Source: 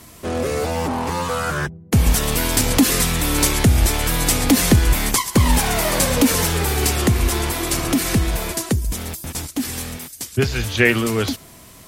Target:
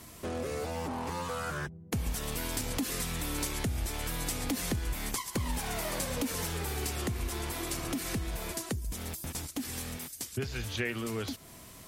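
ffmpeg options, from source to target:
ffmpeg -i in.wav -af "acompressor=threshold=-29dB:ratio=2.5,volume=-6.5dB" out.wav

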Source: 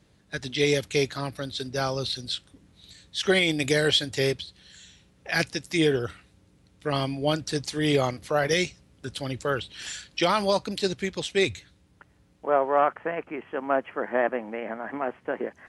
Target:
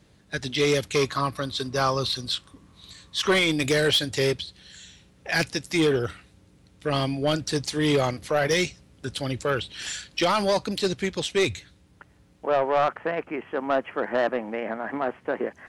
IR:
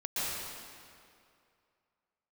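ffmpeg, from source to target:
-filter_complex "[0:a]asoftclip=type=tanh:threshold=-18.5dB,asettb=1/sr,asplit=3[link_01][link_02][link_03];[link_01]atrim=end=0.954[link_04];[link_02]atrim=start=0.95:end=3.36,asetpts=PTS-STARTPTS,afade=type=in:duration=0.004:curve=qsin,afade=type=out:start_time=2.406:duration=0.004:curve=qsin,equalizer=frequency=1100:width_type=o:width=0.28:gain=14.5[link_05];[link_03]atrim=start=3.356[link_06];[link_04][link_05]acrossfade=duration=0.004:curve1=hsin:curve2=qsin[link_07];[link_07][link_06]acrossfade=duration=0.004:curve1=qsin:curve2=hsin,volume=3.5dB"

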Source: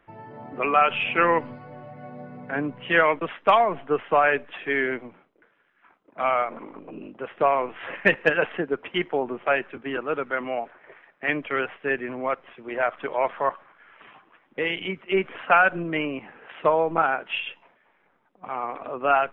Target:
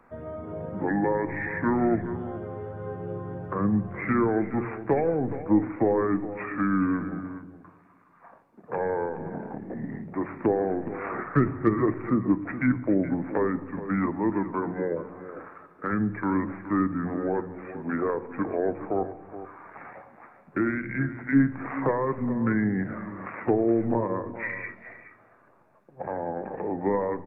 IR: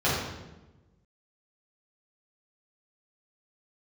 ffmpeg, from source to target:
-filter_complex "[0:a]acrossover=split=460[link_01][link_02];[link_02]acompressor=threshold=-36dB:ratio=6[link_03];[link_01][link_03]amix=inputs=2:normalize=0,aecho=1:1:298:0.211,asplit=2[link_04][link_05];[1:a]atrim=start_sample=2205[link_06];[link_05][link_06]afir=irnorm=-1:irlink=0,volume=-28.5dB[link_07];[link_04][link_07]amix=inputs=2:normalize=0,asetrate=31267,aresample=44100,bandreject=frequency=60:width_type=h:width=6,bandreject=frequency=120:width_type=h:width=6,bandreject=frequency=180:width_type=h:width=6,volume=5dB"

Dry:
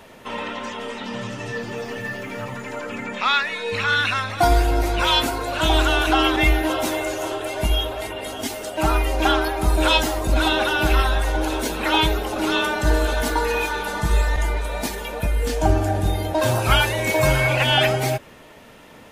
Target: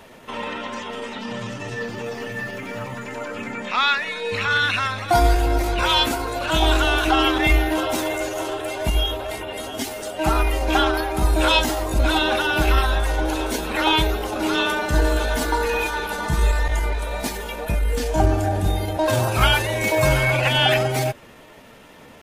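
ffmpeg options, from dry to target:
ffmpeg -i in.wav -af "atempo=0.86" out.wav

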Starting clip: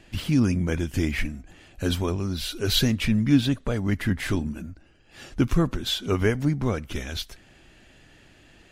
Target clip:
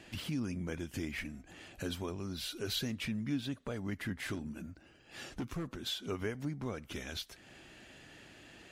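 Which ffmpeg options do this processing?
ffmpeg -i in.wav -filter_complex "[0:a]highpass=frequency=150:poles=1,acompressor=threshold=-45dB:ratio=2,asettb=1/sr,asplit=3[link_01][link_02][link_03];[link_01]atrim=end=4.344[link_04];[link_02]atrim=start=4.34:end=5.72,asetpts=PTS-STARTPTS,afade=type=in:duration=0.004:curve=qsin,afade=type=out:start_time=1.376:duration=0.004:curve=qsin,asoftclip=type=hard:threshold=-33.5dB[link_05];[link_03]atrim=start=5.716[link_06];[link_04][link_05]acrossfade=duration=0.004:curve1=hsin:curve2=qsin[link_07];[link_07][link_06]acrossfade=duration=0.004:curve1=qsin:curve2=hsin" out.wav

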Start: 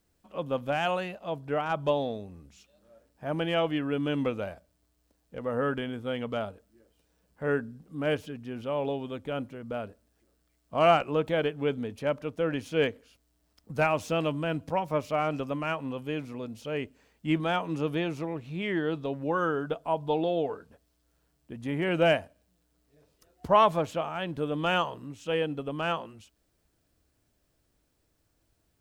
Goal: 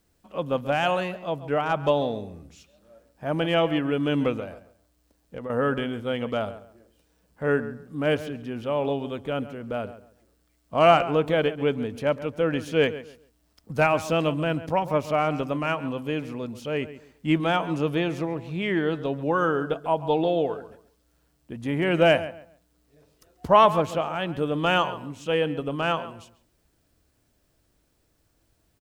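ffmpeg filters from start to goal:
ffmpeg -i in.wav -filter_complex "[0:a]asettb=1/sr,asplit=3[link_01][link_02][link_03];[link_01]atrim=end=4.374[link_04];[link_02]atrim=start=4.37:end=5.5,asetpts=PTS-STARTPTS,afade=type=in:duration=0.004:curve=qsin,afade=type=out:start_time=1.126:duration=0.004:curve=qsin,acompressor=threshold=-37dB:ratio=6[link_05];[link_03]atrim=start=5.496[link_06];[link_04][link_05]acrossfade=duration=0.004:curve1=hsin:curve2=qsin[link_07];[link_07][link_06]acrossfade=duration=0.004:curve1=qsin:curve2=hsin,asplit=2[link_08][link_09];[link_09]adelay=137,lowpass=frequency=2500:poles=1,volume=-14dB,asplit=2[link_10][link_11];[link_11]adelay=137,lowpass=frequency=2500:poles=1,volume=0.25,asplit=2[link_12][link_13];[link_13]adelay=137,lowpass=frequency=2500:poles=1,volume=0.25[link_14];[link_10][link_12][link_14]amix=inputs=3:normalize=0[link_15];[link_08][link_15]amix=inputs=2:normalize=0,volume=4.5dB" out.wav

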